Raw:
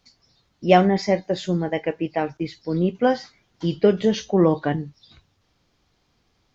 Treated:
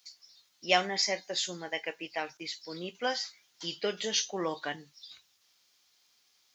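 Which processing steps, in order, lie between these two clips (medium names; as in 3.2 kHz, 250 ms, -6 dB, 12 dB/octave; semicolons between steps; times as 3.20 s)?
differentiator; trim +8.5 dB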